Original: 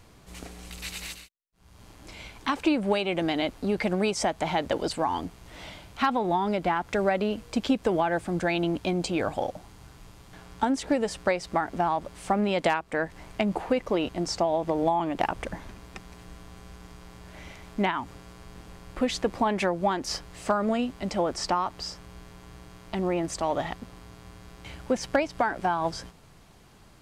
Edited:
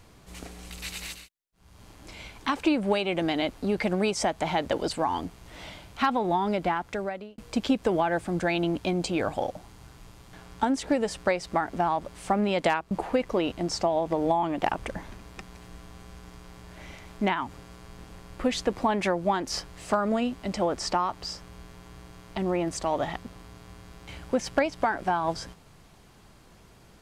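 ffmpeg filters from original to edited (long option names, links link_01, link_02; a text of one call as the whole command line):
ffmpeg -i in.wav -filter_complex "[0:a]asplit=3[link_01][link_02][link_03];[link_01]atrim=end=7.38,asetpts=PTS-STARTPTS,afade=type=out:start_time=6.63:duration=0.75[link_04];[link_02]atrim=start=7.38:end=12.912,asetpts=PTS-STARTPTS,afade=type=in:duration=0.004:curve=hsin[link_05];[link_03]atrim=start=13.478[link_06];[link_04][link_05]concat=n=2:v=0:a=1[link_07];[link_07][link_06]acrossfade=duration=0.004:curve1=hsin:curve2=hsin" out.wav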